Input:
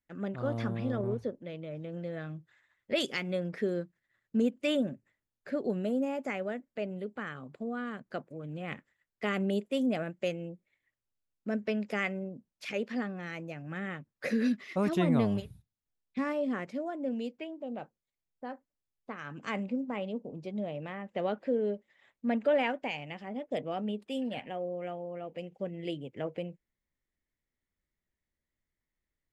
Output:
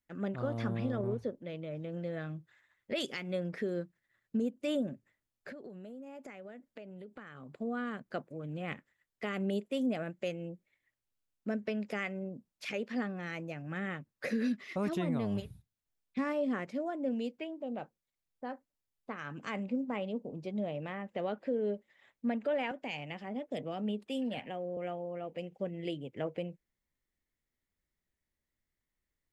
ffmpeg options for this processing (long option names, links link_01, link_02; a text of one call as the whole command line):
ffmpeg -i in.wav -filter_complex "[0:a]asettb=1/sr,asplit=3[link_01][link_02][link_03];[link_01]atrim=end=4.374[link_04];[link_02]atrim=start=4.37:end=4.88,asetpts=PTS-STARTPTS,afade=type=in:duration=0.004:curve=qsin,afade=type=out:start_time=0.506:duration=0.004:curve=qsin,equalizer=frequency=2300:width_type=o:width=1.7:gain=-6[link_05];[link_03]atrim=start=4.876[link_06];[link_04][link_05]acrossfade=duration=0.004:curve1=hsin:curve2=qsin[link_07];[link_07][link_06]acrossfade=duration=0.004:curve1=qsin:curve2=hsin,asettb=1/sr,asplit=3[link_08][link_09][link_10];[link_08]atrim=end=5.514[link_11];[link_09]atrim=start=5.51:end=7.53,asetpts=PTS-STARTPTS,afade=type=in:duration=0.004:curve=qsin,afade=type=out:start_time=2.016:duration=0.004:curve=qsin,acompressor=threshold=-43dB:ratio=20:attack=3.2:release=140:knee=1:detection=peak[link_12];[link_10]atrim=start=7.526[link_13];[link_11][link_12]acrossfade=duration=0.004:curve1=hsin:curve2=qsin[link_14];[link_14][link_13]acrossfade=duration=0.004:curve1=qsin:curve2=hsin,asettb=1/sr,asplit=3[link_15][link_16][link_17];[link_15]atrim=end=22.714[link_18];[link_16]atrim=start=22.71:end=24.77,asetpts=PTS-STARTPTS,afade=type=in:duration=0.004:curve=qsin,afade=type=out:start_time=2.056:duration=0.004:curve=qsin,acrossover=split=300|3000[link_19][link_20][link_21];[link_20]acompressor=threshold=-36dB:ratio=6:attack=3.2:release=140:knee=2.83:detection=peak[link_22];[link_19][link_22][link_21]amix=inputs=3:normalize=0[link_23];[link_17]atrim=start=24.766[link_24];[link_18][link_23]acrossfade=duration=0.004:curve1=hsin:curve2=qsin[link_25];[link_25][link_24]acrossfade=duration=0.004:curve1=qsin:curve2=hsin,alimiter=level_in=0.5dB:limit=-24dB:level=0:latency=1:release=281,volume=-0.5dB" out.wav